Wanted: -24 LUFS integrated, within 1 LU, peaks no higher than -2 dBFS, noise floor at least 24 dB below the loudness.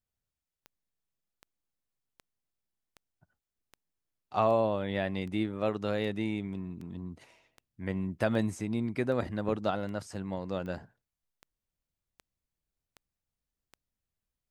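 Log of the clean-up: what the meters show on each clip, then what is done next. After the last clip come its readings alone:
clicks 18; loudness -32.5 LUFS; peak -13.0 dBFS; loudness target -24.0 LUFS
-> de-click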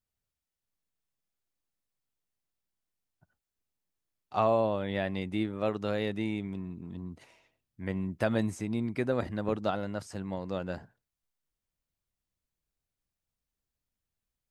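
clicks 0; loudness -32.5 LUFS; peak -13.0 dBFS; loudness target -24.0 LUFS
-> gain +8.5 dB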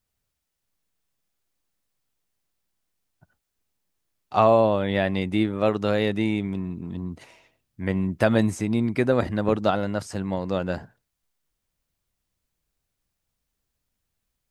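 loudness -24.0 LUFS; peak -4.5 dBFS; noise floor -81 dBFS

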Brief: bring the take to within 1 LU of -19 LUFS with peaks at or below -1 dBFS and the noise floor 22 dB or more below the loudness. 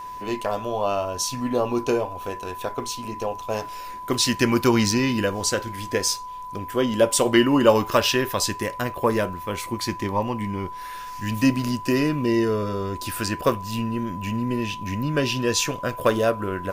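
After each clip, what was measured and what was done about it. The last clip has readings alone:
ticks 41/s; steady tone 1000 Hz; tone level -33 dBFS; loudness -23.5 LUFS; peak -3.0 dBFS; loudness target -19.0 LUFS
-> de-click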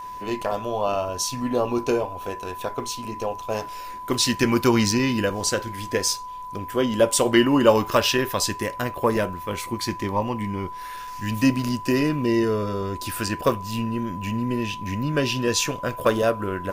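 ticks 0.96/s; steady tone 1000 Hz; tone level -33 dBFS
-> notch 1000 Hz, Q 30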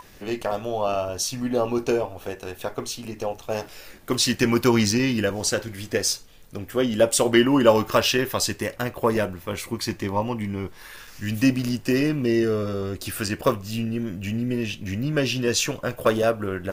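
steady tone none; loudness -24.0 LUFS; peak -3.0 dBFS; loudness target -19.0 LUFS
-> gain +5 dB; limiter -1 dBFS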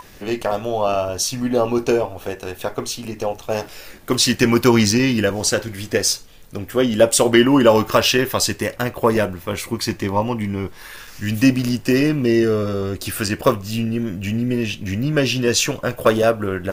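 loudness -19.0 LUFS; peak -1.0 dBFS; noise floor -41 dBFS

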